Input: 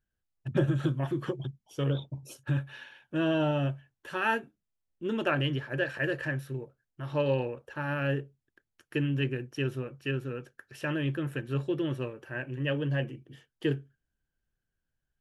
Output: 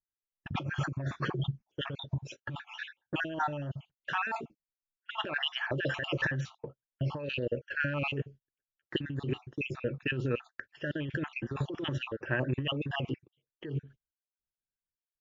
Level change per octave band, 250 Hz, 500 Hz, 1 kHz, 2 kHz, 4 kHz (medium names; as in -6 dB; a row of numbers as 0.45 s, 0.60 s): -5.5 dB, -5.5 dB, -0.5 dB, +0.5 dB, +3.0 dB